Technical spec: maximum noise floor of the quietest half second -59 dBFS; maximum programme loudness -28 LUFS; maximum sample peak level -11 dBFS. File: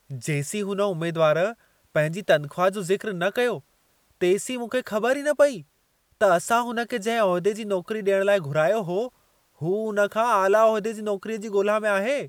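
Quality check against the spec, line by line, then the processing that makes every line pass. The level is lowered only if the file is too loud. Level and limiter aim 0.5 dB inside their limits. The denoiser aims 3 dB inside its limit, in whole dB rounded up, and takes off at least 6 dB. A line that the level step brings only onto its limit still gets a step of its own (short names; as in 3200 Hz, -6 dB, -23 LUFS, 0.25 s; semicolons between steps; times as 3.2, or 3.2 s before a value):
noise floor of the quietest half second -67 dBFS: OK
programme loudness -23.5 LUFS: fail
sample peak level -6.5 dBFS: fail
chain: gain -5 dB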